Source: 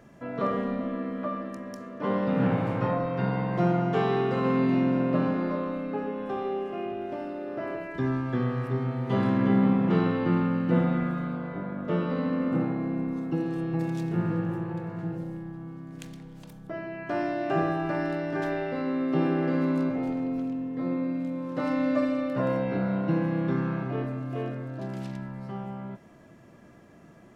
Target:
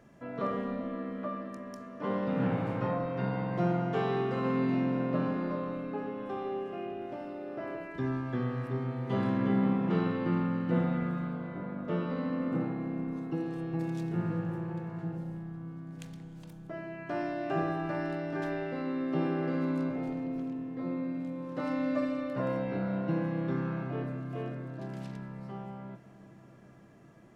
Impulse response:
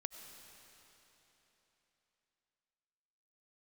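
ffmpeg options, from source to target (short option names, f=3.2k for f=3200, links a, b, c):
-filter_complex "[0:a]asplit=2[a][b];[1:a]atrim=start_sample=2205,asetrate=23373,aresample=44100[c];[b][c]afir=irnorm=-1:irlink=0,volume=-9.5dB[d];[a][d]amix=inputs=2:normalize=0,volume=-7.5dB"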